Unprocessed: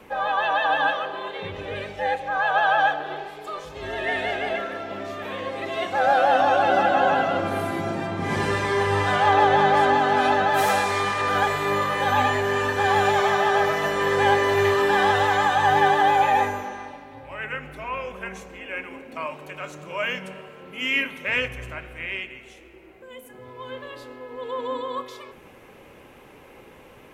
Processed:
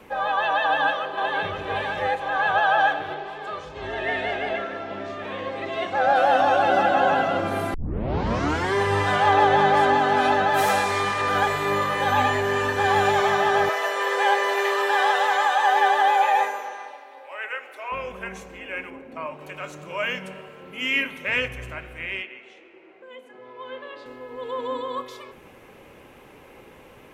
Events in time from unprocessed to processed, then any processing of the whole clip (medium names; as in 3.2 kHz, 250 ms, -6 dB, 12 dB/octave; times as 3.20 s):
0.65–1.56 s: echo throw 520 ms, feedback 70%, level -4.5 dB
3.14–6.16 s: distance through air 71 m
7.74 s: tape start 1.00 s
13.69–17.92 s: high-pass 450 Hz 24 dB/octave
18.90–19.41 s: treble shelf 2.4 kHz -11 dB
22.22–24.06 s: band-pass 300–3800 Hz